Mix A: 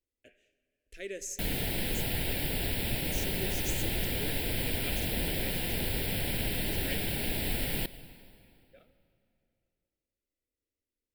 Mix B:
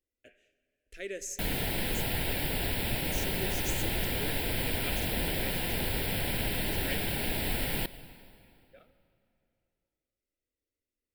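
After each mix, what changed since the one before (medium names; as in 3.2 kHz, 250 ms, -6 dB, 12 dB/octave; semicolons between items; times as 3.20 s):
master: add peaking EQ 1.1 kHz +6.5 dB 1.2 oct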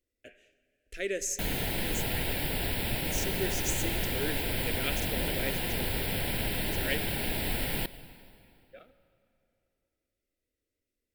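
speech +6.0 dB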